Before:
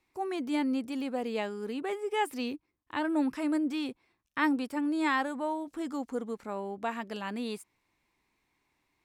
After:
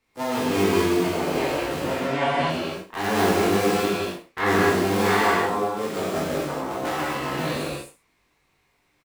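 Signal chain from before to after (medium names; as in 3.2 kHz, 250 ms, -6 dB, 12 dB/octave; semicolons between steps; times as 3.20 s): cycle switcher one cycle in 3, inverted; 1.86–2.50 s: low-pass 4.7 kHz 12 dB/octave; reverse bouncing-ball echo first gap 20 ms, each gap 1.15×, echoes 5; gated-style reverb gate 290 ms flat, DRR -6 dB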